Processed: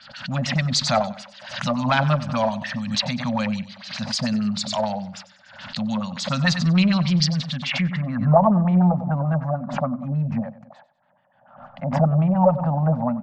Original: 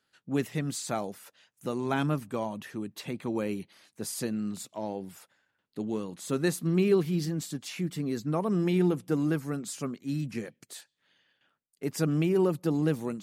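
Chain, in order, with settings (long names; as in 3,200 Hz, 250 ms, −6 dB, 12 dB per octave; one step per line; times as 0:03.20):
Chebyshev band-stop filter 250–560 Hz, order 4
auto-filter low-pass sine 6.8 Hz 530–7,100 Hz
in parallel at −6 dB: asymmetric clip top −32.5 dBFS
on the sum: low-pass filter sweep 4,700 Hz → 790 Hz, 0:07.33–0:08.38
on a send: repeating echo 95 ms, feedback 34%, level −16 dB
on the sum: background raised ahead of every attack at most 76 dB per second
level +7 dB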